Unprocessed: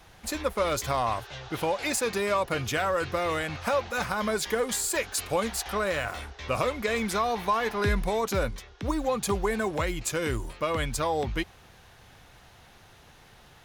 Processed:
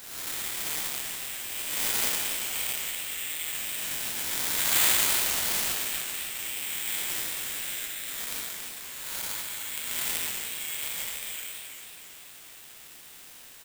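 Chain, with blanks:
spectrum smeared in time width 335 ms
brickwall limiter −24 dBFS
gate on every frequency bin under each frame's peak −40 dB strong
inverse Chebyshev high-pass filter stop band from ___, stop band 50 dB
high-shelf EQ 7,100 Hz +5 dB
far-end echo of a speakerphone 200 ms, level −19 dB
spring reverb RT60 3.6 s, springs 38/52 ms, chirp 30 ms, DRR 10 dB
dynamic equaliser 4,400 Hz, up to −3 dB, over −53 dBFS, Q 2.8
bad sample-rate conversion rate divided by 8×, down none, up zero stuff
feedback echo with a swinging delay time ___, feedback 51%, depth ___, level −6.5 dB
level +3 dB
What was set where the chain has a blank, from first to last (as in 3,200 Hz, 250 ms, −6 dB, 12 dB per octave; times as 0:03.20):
930 Hz, 275 ms, 155 cents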